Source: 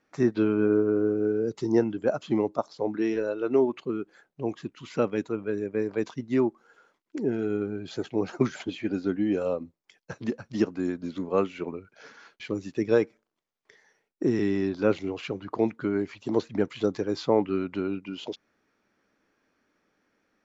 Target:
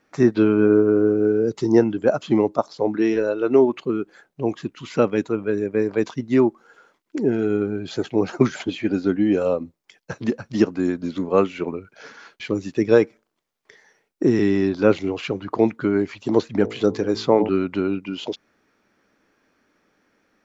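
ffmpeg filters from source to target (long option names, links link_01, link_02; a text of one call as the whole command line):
ffmpeg -i in.wav -filter_complex "[0:a]asettb=1/sr,asplit=3[link_01][link_02][link_03];[link_01]atrim=end=16.594[link_04];[link_02]atrim=start=16.59:end=17.49,asetpts=PTS-STARTPTS,afade=type=in:duration=0.004:curve=qsin,afade=type=out:start_time=0.896:duration=0.004:curve=qsin,bandreject=frequency=54.26:width_type=h:width=4,bandreject=frequency=108.52:width_type=h:width=4,bandreject=frequency=162.78:width_type=h:width=4,bandreject=frequency=217.04:width_type=h:width=4,bandreject=frequency=271.3:width_type=h:width=4,bandreject=frequency=325.56:width_type=h:width=4,bandreject=frequency=379.82:width_type=h:width=4,bandreject=frequency=434.08:width_type=h:width=4,bandreject=frequency=488.34:width_type=h:width=4,bandreject=frequency=542.6:width_type=h:width=4,bandreject=frequency=596.86:width_type=h:width=4,bandreject=frequency=651.12:width_type=h:width=4,bandreject=frequency=705.38:width_type=h:width=4,bandreject=frequency=759.64:width_type=h:width=4,bandreject=frequency=813.9:width_type=h:width=4,bandreject=frequency=868.16:width_type=h:width=4,bandreject=frequency=922.42:width_type=h:width=4,bandreject=frequency=976.68:width_type=h:width=4,bandreject=frequency=1030.94:width_type=h:width=4[link_05];[link_03]atrim=start=17.486[link_06];[link_04][link_05]acrossfade=duration=0.004:curve1=hsin:curve2=qsin[link_07];[link_07][link_06]acrossfade=duration=0.004:curve1=qsin:curve2=hsin,volume=7dB" out.wav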